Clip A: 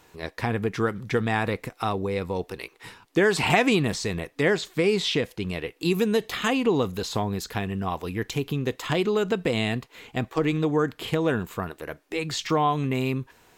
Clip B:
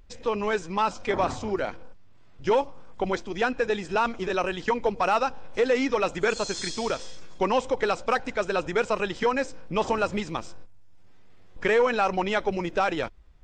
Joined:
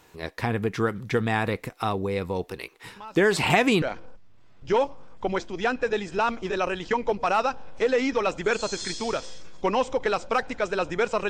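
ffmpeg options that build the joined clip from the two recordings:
ffmpeg -i cue0.wav -i cue1.wav -filter_complex "[1:a]asplit=2[link_01][link_02];[0:a]apad=whole_dur=11.29,atrim=end=11.29,atrim=end=3.822[link_03];[link_02]atrim=start=1.588:end=9.06[link_04];[link_01]atrim=start=0.73:end=1.59,asetpts=PTS-STARTPTS,volume=-17dB,afade=type=in:duration=0.004:curve=hsin,afade=type=out:start_time=0.856:duration=0.004:curve=hsin,adelay=2960[link_05];[link_03][link_04]acrossfade=duration=0.004:curve1=hsin:curve2=hsin[link_06];[link_06][link_05]amix=inputs=2:normalize=0" out.wav

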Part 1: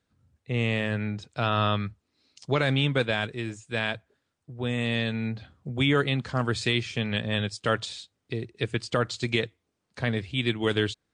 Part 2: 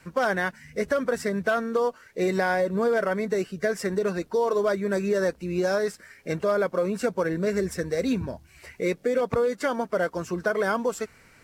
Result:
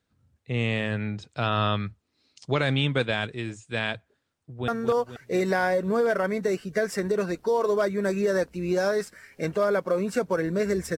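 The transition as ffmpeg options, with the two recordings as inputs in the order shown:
ffmpeg -i cue0.wav -i cue1.wav -filter_complex "[0:a]apad=whole_dur=10.97,atrim=end=10.97,atrim=end=4.682[link_01];[1:a]atrim=start=1.548:end=7.84[link_02];[link_01][link_02]acrossfade=duration=0.004:curve1=hsin:curve2=hsin,asplit=2[link_03][link_04];[link_04]afade=type=in:start_time=4.4:duration=0.01,afade=type=out:start_time=4.68:duration=0.01,aecho=0:1:240|480|720|960|1200|1440|1680:0.446684|0.245676|0.135122|0.074317|0.0408743|0.0224809|0.0123645[link_05];[link_03][link_05]amix=inputs=2:normalize=0" out.wav

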